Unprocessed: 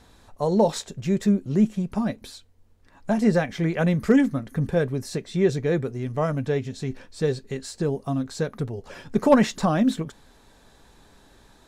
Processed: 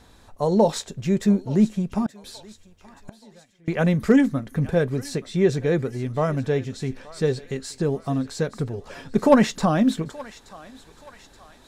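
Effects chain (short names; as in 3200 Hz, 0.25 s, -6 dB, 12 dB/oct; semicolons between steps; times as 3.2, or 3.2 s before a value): 2.06–3.68 flipped gate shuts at -27 dBFS, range -32 dB; on a send: thinning echo 0.876 s, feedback 58%, high-pass 880 Hz, level -16 dB; on the sum: gain +1.5 dB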